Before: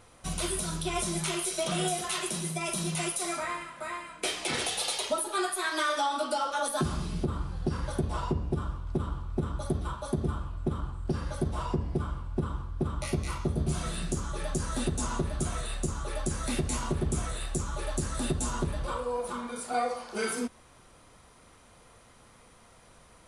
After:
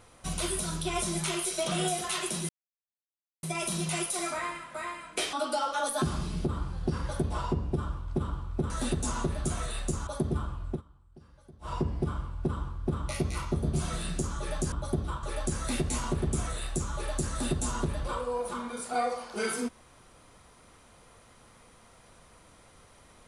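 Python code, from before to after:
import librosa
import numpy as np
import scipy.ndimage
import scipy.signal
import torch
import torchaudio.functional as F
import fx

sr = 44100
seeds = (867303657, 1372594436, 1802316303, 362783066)

y = fx.edit(x, sr, fx.insert_silence(at_s=2.49, length_s=0.94),
    fx.cut(start_s=4.39, length_s=1.73),
    fx.swap(start_s=9.49, length_s=0.51, other_s=14.65, other_length_s=1.37),
    fx.fade_down_up(start_s=10.63, length_s=1.03, db=-23.0, fade_s=0.12), tone=tone)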